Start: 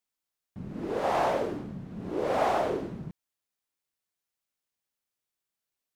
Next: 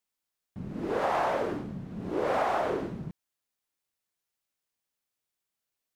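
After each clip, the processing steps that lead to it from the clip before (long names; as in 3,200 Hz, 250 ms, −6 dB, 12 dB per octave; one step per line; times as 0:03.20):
dynamic equaliser 1,400 Hz, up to +6 dB, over −42 dBFS, Q 0.79
downward compressor, threshold −25 dBFS, peak gain reduction 7 dB
level +1 dB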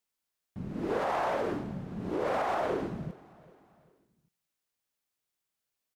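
brickwall limiter −21.5 dBFS, peak gain reduction 5.5 dB
repeating echo 392 ms, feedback 46%, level −22 dB
on a send at −23 dB: convolution reverb, pre-delay 43 ms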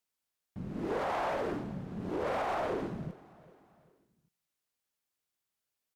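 tube saturation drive 26 dB, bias 0.4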